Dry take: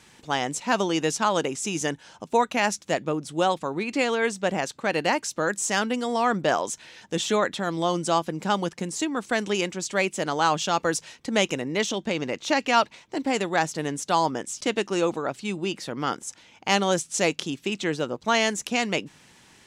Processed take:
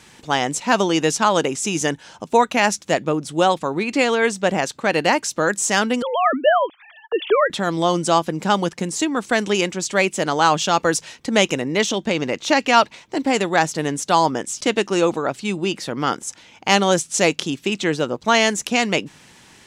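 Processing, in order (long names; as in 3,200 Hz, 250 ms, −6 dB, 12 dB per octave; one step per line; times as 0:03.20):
0:06.02–0:07.50: three sine waves on the formant tracks
level +6 dB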